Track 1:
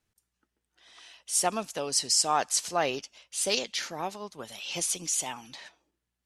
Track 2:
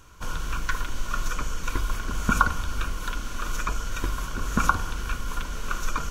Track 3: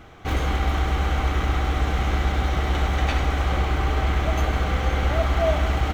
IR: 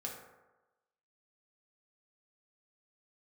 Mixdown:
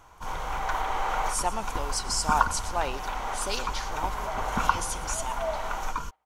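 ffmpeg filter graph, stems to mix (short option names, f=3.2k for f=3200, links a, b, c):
-filter_complex "[0:a]volume=-5dB,asplit=3[a][b][c];[b]volume=-17dB[d];[1:a]volume=-6.5dB[e];[2:a]dynaudnorm=f=250:g=5:m=11dB,highpass=f=480:w=0.5412,highpass=f=480:w=1.3066,highshelf=f=2.7k:g=-10.5,volume=-9.5dB,asplit=2[f][g];[g]volume=-21dB[h];[c]apad=whole_len=261671[i];[f][i]sidechaincompress=threshold=-47dB:ratio=3:attack=48:release=444[j];[d][h]amix=inputs=2:normalize=0,aecho=0:1:117|234|351|468|585:1|0.32|0.102|0.0328|0.0105[k];[a][e][j][k]amix=inputs=4:normalize=0,equalizer=f=940:t=o:w=0.3:g=13"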